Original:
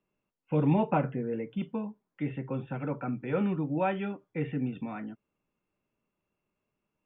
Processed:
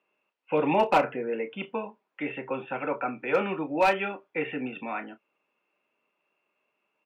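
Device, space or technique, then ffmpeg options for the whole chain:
megaphone: -filter_complex "[0:a]highpass=490,lowpass=3200,equalizer=f=2600:t=o:w=0.37:g=7,asoftclip=type=hard:threshold=0.0668,asplit=2[s0][s1];[s1]adelay=31,volume=0.251[s2];[s0][s2]amix=inputs=2:normalize=0,volume=2.82"

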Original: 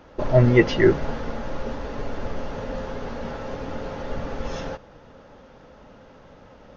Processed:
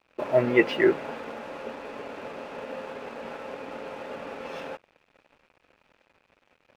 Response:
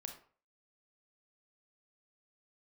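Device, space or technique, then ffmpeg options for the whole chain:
pocket radio on a weak battery: -af "highpass=300,lowpass=3400,aeval=exprs='sgn(val(0))*max(abs(val(0))-0.00447,0)':c=same,equalizer=f=2500:t=o:w=0.26:g=8.5,volume=0.794"

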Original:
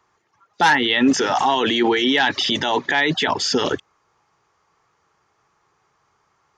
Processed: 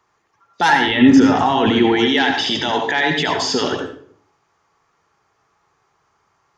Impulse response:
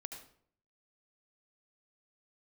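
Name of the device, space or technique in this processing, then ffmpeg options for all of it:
bathroom: -filter_complex "[0:a]asettb=1/sr,asplit=3[s0][s1][s2];[s0]atrim=end=0.874[s3];[s1]atrim=start=0.87:end=1.99,asetpts=PTS-STARTPTS,afade=t=in:d=0.004:c=qsin,afade=t=out:st=1.116:d=0.004:c=qsin,bass=f=250:g=13,treble=f=4000:g=-8[s4];[s2]atrim=start=1.986[s5];[s3][s4]acrossfade=d=0.004:c1=hsin:c2=qsin[s6];[s6][s5]acrossfade=d=0.004:c1=qsin:c2=hsin[s7];[1:a]atrim=start_sample=2205[s8];[s7][s8]afir=irnorm=-1:irlink=0,volume=1.68"

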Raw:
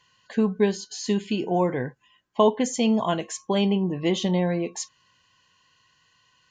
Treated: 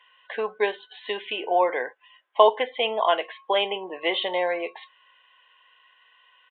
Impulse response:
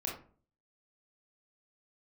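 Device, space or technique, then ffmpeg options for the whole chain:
musical greeting card: -af "aresample=8000,aresample=44100,highpass=f=510:w=0.5412,highpass=f=510:w=1.3066,equalizer=f=2100:t=o:w=0.25:g=4,volume=1.88"

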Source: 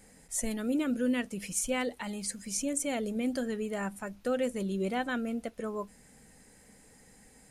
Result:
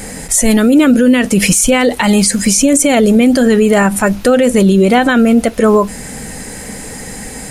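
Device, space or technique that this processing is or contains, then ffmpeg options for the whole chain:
loud club master: -af "acompressor=threshold=0.0158:ratio=1.5,asoftclip=type=hard:threshold=0.075,alimiter=level_in=39.8:limit=0.891:release=50:level=0:latency=1,volume=0.891"

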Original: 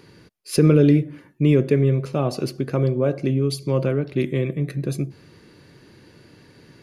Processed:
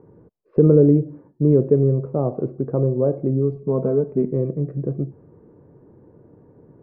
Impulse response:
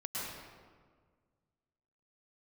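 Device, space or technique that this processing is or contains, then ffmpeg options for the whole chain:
under water: -filter_complex "[0:a]asettb=1/sr,asplit=3[s0][s1][s2];[s0]atrim=end=3.554[s3];[s1]atrim=start=3.55:end=4.32,asetpts=PTS-STARTPTS,afade=t=in:d=0.004:c=qsin,afade=t=out:st=0.766:d=0.004:c=qsin,aecho=1:1:4.6:0.62,atrim=end_sample=33957[s4];[s2]atrim=start=4.316[s5];[s3][s4]acrossfade=d=0.004:c1=hsin:c2=qsin[s6];[s6][s5]acrossfade=d=0.004:c1=qsin:c2=hsin,lowpass=f=950:w=0.5412,lowpass=f=950:w=1.3066,equalizer=f=460:t=o:w=0.31:g=5"

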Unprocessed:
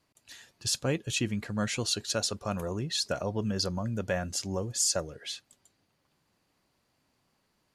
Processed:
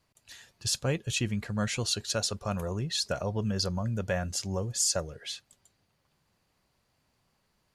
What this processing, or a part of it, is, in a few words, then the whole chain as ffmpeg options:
low shelf boost with a cut just above: -af "lowshelf=f=92:g=7.5,equalizer=f=290:t=o:w=0.55:g=-5.5"

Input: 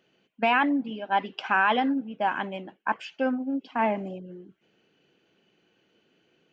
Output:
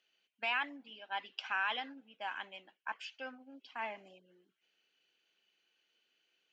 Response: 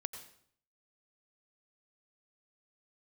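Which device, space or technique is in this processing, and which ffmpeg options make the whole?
piezo pickup straight into a mixer: -af "lowpass=5000,aderivative,volume=1.33"

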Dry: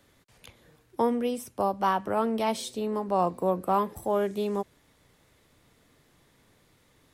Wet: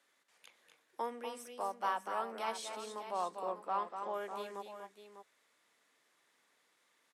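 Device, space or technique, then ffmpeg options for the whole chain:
piezo pickup straight into a mixer: -filter_complex "[0:a]asettb=1/sr,asplit=3[s0][s1][s2];[s0]atrim=end=3.424[s3];[s1]atrim=start=3.42:end=4.14,asetpts=PTS-STARTPTS,afade=t=in:d=0.004:c=qsin,afade=t=out:st=0.716:d=0.004:c=qsin,lowpass=f=6000:w=0.5412,lowpass=f=6000:w=1.3066[s4];[s2]atrim=start=4.136[s5];[s3][s4]acrossfade=d=0.004:c1=hsin:c2=qsin[s6];[s6][s5]acrossfade=d=0.004:c1=qsin:c2=hsin,lowpass=8100,aderivative,acrossover=split=160 2100:gain=0.0891 1 0.2[s7][s8][s9];[s7][s8][s9]amix=inputs=3:normalize=0,aecho=1:1:243|263|599:0.422|0.15|0.299,volume=2.51"

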